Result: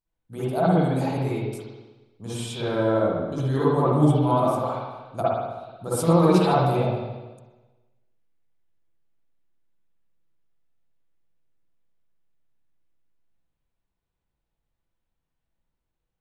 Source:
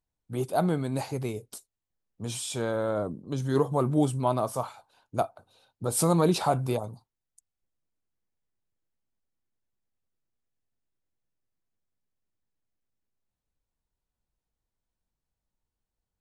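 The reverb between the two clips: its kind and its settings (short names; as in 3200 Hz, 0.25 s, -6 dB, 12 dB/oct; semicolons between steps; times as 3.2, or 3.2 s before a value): spring tank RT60 1.2 s, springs 54/60 ms, chirp 25 ms, DRR -9.5 dB; gain -4.5 dB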